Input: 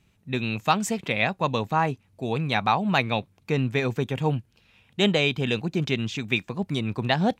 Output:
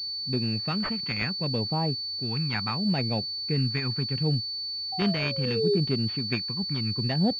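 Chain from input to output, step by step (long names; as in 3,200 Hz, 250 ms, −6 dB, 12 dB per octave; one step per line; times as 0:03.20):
sound drawn into the spectrogram fall, 0:04.92–0:05.77, 390–780 Hz −19 dBFS
all-pass phaser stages 2, 0.71 Hz, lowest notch 540–1,400 Hz
switching amplifier with a slow clock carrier 4,500 Hz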